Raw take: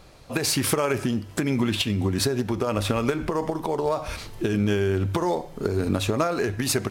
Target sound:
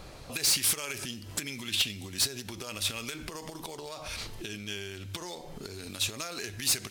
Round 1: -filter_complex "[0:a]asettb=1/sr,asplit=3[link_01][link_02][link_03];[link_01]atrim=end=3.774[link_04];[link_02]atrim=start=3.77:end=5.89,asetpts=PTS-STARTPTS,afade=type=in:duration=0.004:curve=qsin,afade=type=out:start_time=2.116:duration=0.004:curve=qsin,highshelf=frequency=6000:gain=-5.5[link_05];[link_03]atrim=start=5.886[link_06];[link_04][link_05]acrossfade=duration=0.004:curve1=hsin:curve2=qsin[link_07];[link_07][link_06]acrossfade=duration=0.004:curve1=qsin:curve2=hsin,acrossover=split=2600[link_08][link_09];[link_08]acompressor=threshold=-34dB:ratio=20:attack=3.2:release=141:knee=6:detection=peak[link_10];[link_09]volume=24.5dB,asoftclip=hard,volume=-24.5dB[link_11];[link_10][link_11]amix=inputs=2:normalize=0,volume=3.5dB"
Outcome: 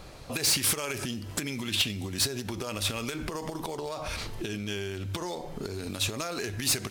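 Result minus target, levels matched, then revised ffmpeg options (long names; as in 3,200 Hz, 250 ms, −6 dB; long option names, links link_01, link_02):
downward compressor: peak gain reduction −7 dB
-filter_complex "[0:a]asettb=1/sr,asplit=3[link_01][link_02][link_03];[link_01]atrim=end=3.774[link_04];[link_02]atrim=start=3.77:end=5.89,asetpts=PTS-STARTPTS,afade=type=in:duration=0.004:curve=qsin,afade=type=out:start_time=2.116:duration=0.004:curve=qsin,highshelf=frequency=6000:gain=-5.5[link_05];[link_03]atrim=start=5.886[link_06];[link_04][link_05]acrossfade=duration=0.004:curve1=hsin:curve2=qsin[link_07];[link_07][link_06]acrossfade=duration=0.004:curve1=qsin:curve2=hsin,acrossover=split=2600[link_08][link_09];[link_08]acompressor=threshold=-41.5dB:ratio=20:attack=3.2:release=141:knee=6:detection=peak[link_10];[link_09]volume=24.5dB,asoftclip=hard,volume=-24.5dB[link_11];[link_10][link_11]amix=inputs=2:normalize=0,volume=3.5dB"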